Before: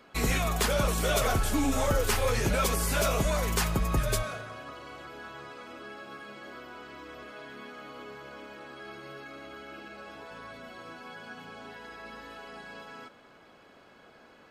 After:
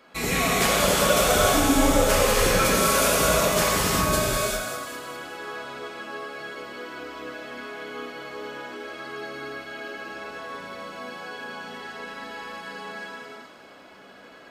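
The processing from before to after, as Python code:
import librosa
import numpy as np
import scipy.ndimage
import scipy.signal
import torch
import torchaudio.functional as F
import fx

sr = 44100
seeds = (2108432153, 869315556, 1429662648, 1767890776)

y = fx.low_shelf(x, sr, hz=130.0, db=-10.0)
y = fx.echo_wet_highpass(y, sr, ms=199, feedback_pct=51, hz=4000.0, wet_db=-6.0)
y = fx.rev_gated(y, sr, seeds[0], gate_ms=430, shape='flat', drr_db=-6.5)
y = y * 10.0 ** (1.0 / 20.0)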